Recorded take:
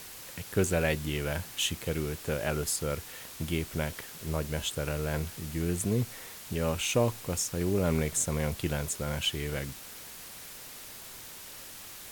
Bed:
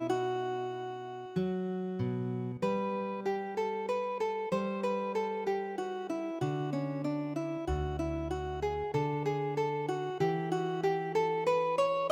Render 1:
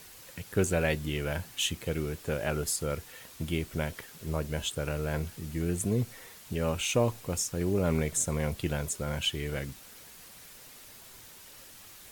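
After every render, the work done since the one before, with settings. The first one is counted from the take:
broadband denoise 6 dB, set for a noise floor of −46 dBFS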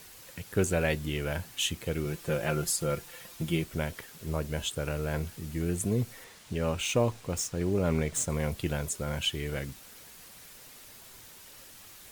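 0:02.05–0:03.64: comb filter 5.8 ms
0:06.24–0:08.30: running median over 3 samples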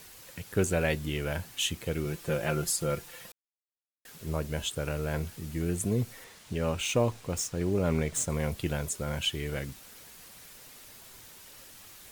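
0:03.32–0:04.05: silence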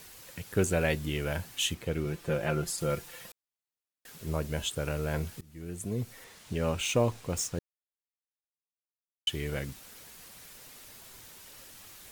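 0:01.74–0:02.78: high-shelf EQ 4,500 Hz −7.5 dB
0:05.41–0:06.43: fade in, from −21.5 dB
0:07.59–0:09.27: silence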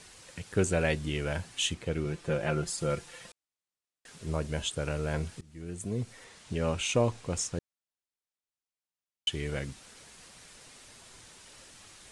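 Butterworth low-pass 10,000 Hz 48 dB per octave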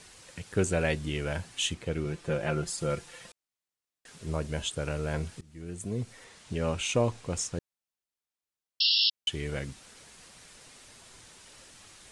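0:08.80–0:09.10: sound drawn into the spectrogram noise 2,700–5,500 Hz −24 dBFS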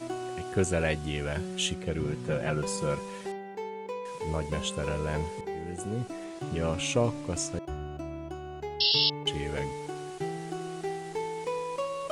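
mix in bed −4 dB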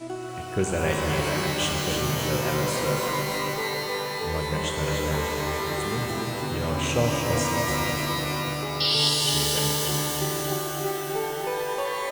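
on a send: repeating echo 293 ms, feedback 58%, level −7 dB
on the sum: reverb with rising layers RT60 3.6 s, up +12 semitones, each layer −2 dB, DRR 1.5 dB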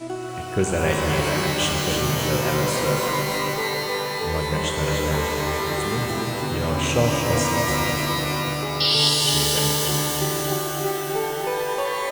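level +3.5 dB

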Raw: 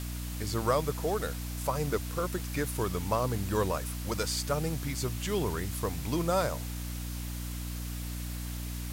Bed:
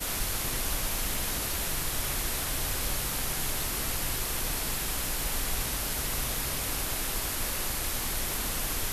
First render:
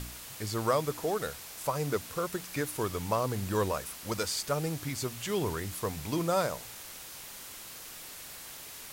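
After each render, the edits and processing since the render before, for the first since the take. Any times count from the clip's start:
hum removal 60 Hz, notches 5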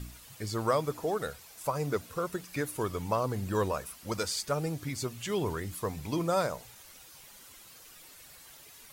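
broadband denoise 10 dB, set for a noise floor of −46 dBFS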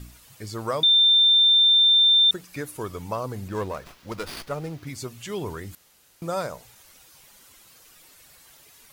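0:00.83–0:02.31: beep over 3,580 Hz −13.5 dBFS
0:03.48–0:04.87: windowed peak hold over 5 samples
0:05.75–0:06.22: fill with room tone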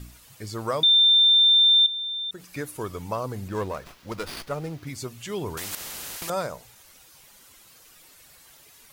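0:01.86–0:02.47: downward compressor 3 to 1, threshold −35 dBFS
0:05.57–0:06.30: every bin compressed towards the loudest bin 4 to 1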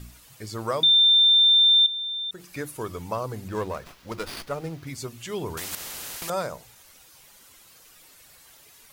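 mains-hum notches 50/100/150/200/250/300/350 Hz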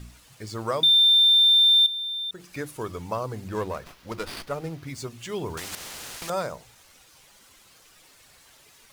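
running median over 3 samples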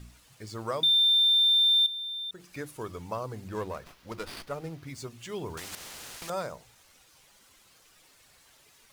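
level −5 dB

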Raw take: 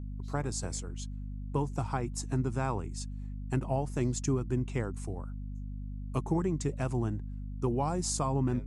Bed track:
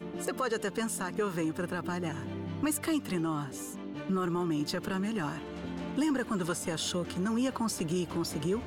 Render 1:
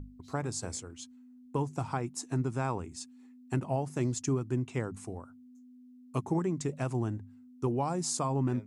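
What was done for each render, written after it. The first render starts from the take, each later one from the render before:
mains-hum notches 50/100/150/200 Hz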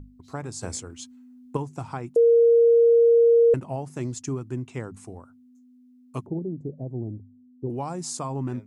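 0:00.61–0:01.57: clip gain +5.5 dB
0:02.16–0:03.54: beep over 466 Hz −13 dBFS
0:06.26–0:07.70: inverse Chebyshev low-pass filter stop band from 1,200 Hz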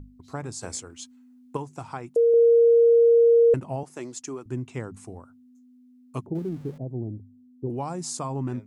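0:00.54–0:02.34: low-shelf EQ 300 Hz −7 dB
0:03.83–0:04.46: high-pass filter 350 Hz
0:06.35–0:06.78: converter with a step at zero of −45.5 dBFS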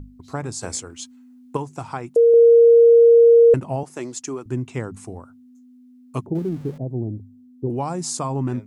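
level +5.5 dB

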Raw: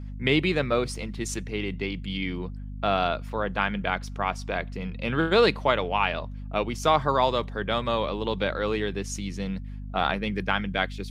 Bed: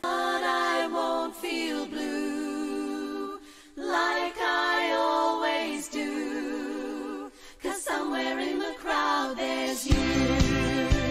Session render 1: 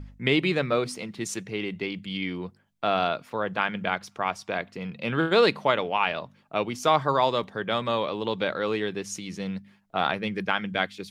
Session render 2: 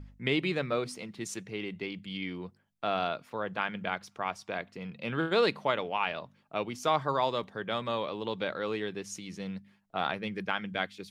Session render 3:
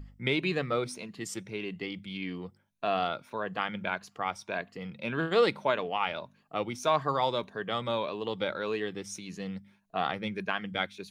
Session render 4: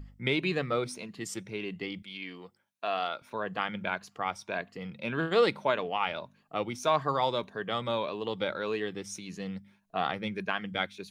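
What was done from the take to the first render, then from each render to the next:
hum removal 50 Hz, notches 5
level −6 dB
rippled gain that drifts along the octave scale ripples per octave 1.5, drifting +1.7 Hz, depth 8 dB
0:02.02–0:03.22: high-pass filter 630 Hz 6 dB per octave

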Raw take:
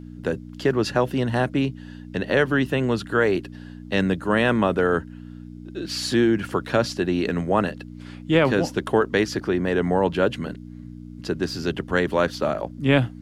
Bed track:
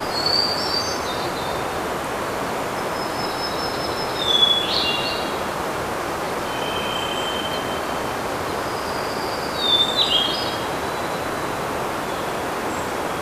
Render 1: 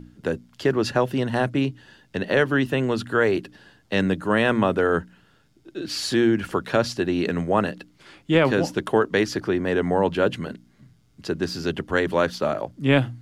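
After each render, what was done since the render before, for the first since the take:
hum removal 60 Hz, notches 5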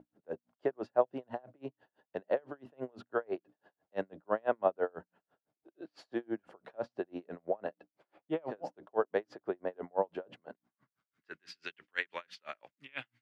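band-pass filter sweep 670 Hz → 2,300 Hz, 0:10.38–0:11.50
tremolo with a sine in dB 6 Hz, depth 37 dB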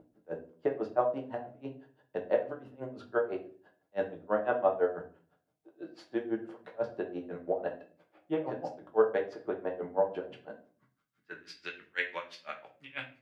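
rectangular room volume 30 cubic metres, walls mixed, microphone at 0.45 metres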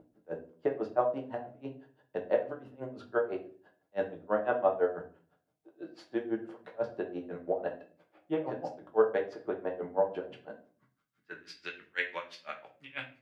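no processing that can be heard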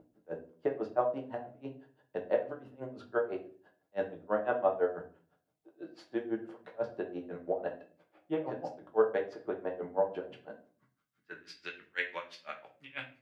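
level −1.5 dB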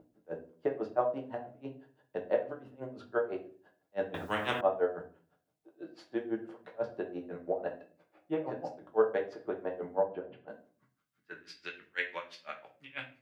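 0:04.14–0:04.61: every bin compressed towards the loudest bin 4 to 1
0:07.10–0:08.82: notch filter 3,200 Hz
0:10.03–0:10.48: high-frequency loss of the air 450 metres

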